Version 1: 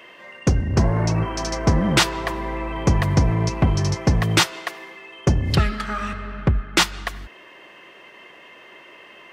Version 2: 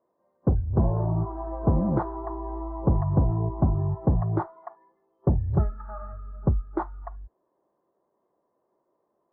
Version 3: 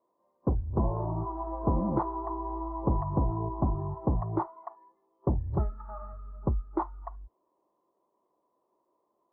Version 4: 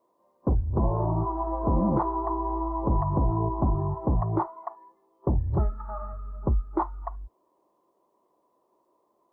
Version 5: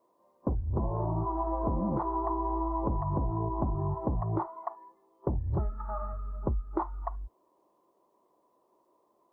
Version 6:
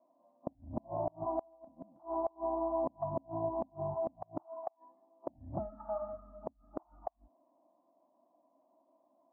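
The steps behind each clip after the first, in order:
inverse Chebyshev low-pass filter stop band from 2,500 Hz, stop band 50 dB; noise reduction from a noise print of the clip's start 19 dB; level −4 dB
thirty-one-band graphic EQ 100 Hz −6 dB, 160 Hz −5 dB, 315 Hz +3 dB, 1,000 Hz +8 dB, 1,600 Hz −8 dB; level −4 dB
brickwall limiter −21 dBFS, peak gain reduction 7 dB; level +6 dB
downward compressor 10 to 1, threshold −26 dBFS, peak gain reduction 8 dB
pair of resonant band-passes 420 Hz, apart 1.3 octaves; gate with flip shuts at −31 dBFS, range −31 dB; level +8 dB

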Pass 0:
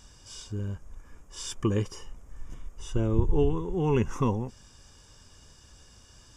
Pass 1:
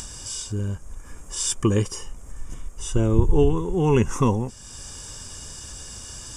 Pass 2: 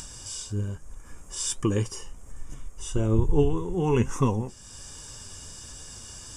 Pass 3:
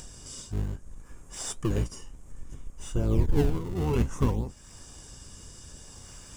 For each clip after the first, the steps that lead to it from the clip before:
parametric band 8,800 Hz +12 dB 0.83 octaves; upward compression, threshold −35 dBFS; level +6 dB
flanger 1.2 Hz, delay 6.2 ms, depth 5.8 ms, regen +68%
sub-octave generator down 1 octave, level +1 dB; in parallel at −9 dB: sample-and-hold swept by an LFO 31×, swing 160% 0.6 Hz; on the sum: level −6.5 dB

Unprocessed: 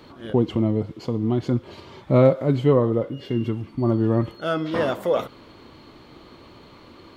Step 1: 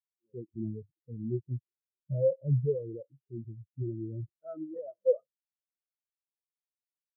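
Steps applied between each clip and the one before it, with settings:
parametric band 260 Hz −5.5 dB 0.3 octaves
brickwall limiter −17.5 dBFS, peak gain reduction 11 dB
every bin expanded away from the loudest bin 4 to 1
level +2 dB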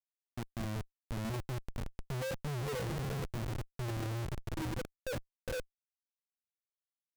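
feedback delay with all-pass diffusion 452 ms, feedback 54%, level −11 dB
phaser swept by the level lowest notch 220 Hz, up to 1,200 Hz, full sweep at −33.5 dBFS
comparator with hysteresis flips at −41 dBFS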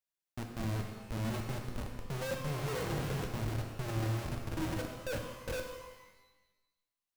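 reverb with rising layers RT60 1.1 s, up +12 semitones, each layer −8 dB, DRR 2.5 dB

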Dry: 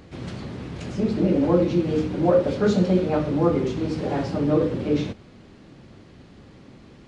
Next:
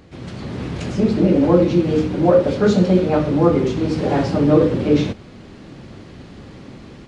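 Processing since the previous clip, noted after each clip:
automatic gain control gain up to 9 dB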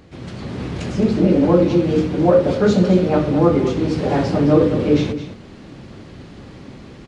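single-tap delay 214 ms −11.5 dB

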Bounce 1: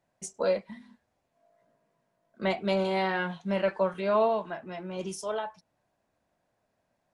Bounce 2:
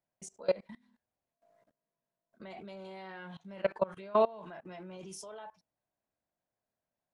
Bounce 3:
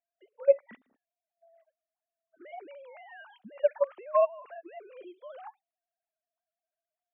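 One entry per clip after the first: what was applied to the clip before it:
output level in coarse steps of 23 dB
three sine waves on the formant tracks; level +4.5 dB

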